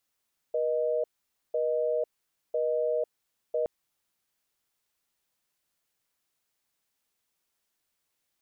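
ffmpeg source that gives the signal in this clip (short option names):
-f lavfi -i "aevalsrc='0.0422*(sin(2*PI*480*t)+sin(2*PI*620*t))*clip(min(mod(t,1),0.5-mod(t,1))/0.005,0,1)':d=3.12:s=44100"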